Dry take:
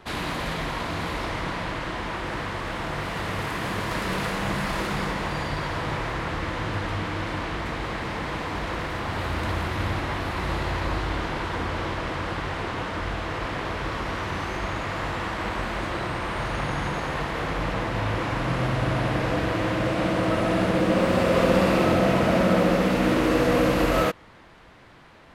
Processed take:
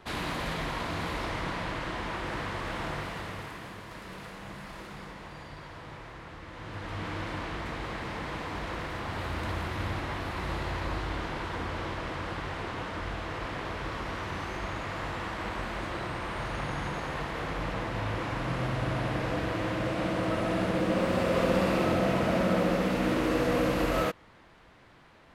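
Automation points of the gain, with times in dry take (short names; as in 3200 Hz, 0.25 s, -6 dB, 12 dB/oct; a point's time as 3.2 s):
2.88 s -4 dB
3.82 s -16 dB
6.46 s -16 dB
7.08 s -6 dB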